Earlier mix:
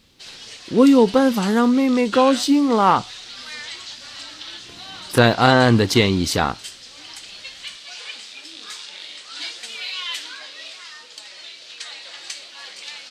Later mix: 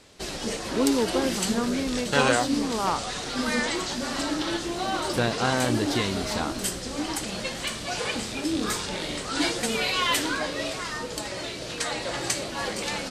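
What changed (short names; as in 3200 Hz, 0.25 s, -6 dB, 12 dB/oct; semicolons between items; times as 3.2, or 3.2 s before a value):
speech -11.5 dB; background: remove band-pass 3600 Hz, Q 1.3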